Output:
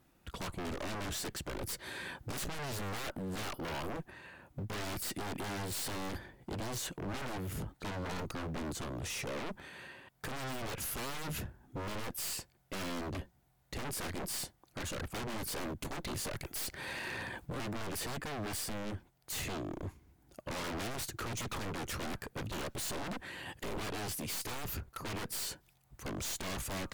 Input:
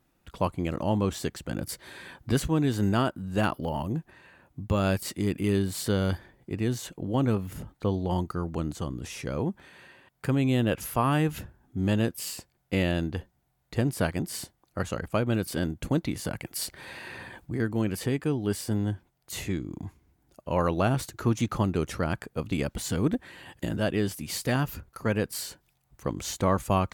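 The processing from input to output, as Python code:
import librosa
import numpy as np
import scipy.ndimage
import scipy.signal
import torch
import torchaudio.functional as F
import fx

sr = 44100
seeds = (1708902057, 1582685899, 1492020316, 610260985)

y = fx.tube_stage(x, sr, drive_db=28.0, bias=0.45)
y = 10.0 ** (-37.0 / 20.0) * (np.abs((y / 10.0 ** (-37.0 / 20.0) + 3.0) % 4.0 - 2.0) - 1.0)
y = y * 10.0 ** (3.5 / 20.0)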